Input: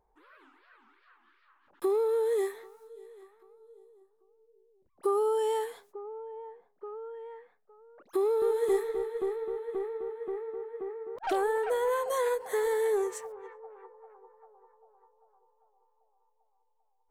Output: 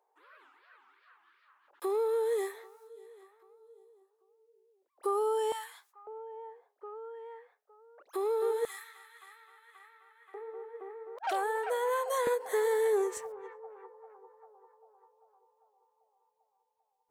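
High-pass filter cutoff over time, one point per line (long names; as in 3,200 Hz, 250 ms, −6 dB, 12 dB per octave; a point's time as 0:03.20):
high-pass filter 24 dB per octave
430 Hz
from 0:05.52 990 Hz
from 0:06.07 450 Hz
from 0:08.65 1,300 Hz
from 0:10.34 500 Hz
from 0:12.27 240 Hz
from 0:13.17 66 Hz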